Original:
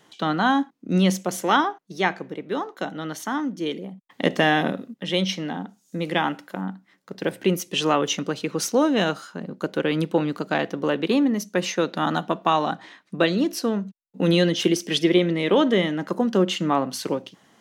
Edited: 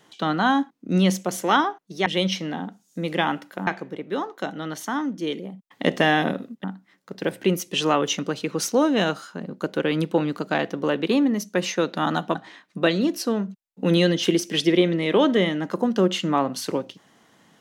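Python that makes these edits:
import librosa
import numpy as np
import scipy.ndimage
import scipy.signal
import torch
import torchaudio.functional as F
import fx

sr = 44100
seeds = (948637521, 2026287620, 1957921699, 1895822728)

y = fx.edit(x, sr, fx.move(start_s=5.03, length_s=1.61, to_s=2.06),
    fx.cut(start_s=12.35, length_s=0.37), tone=tone)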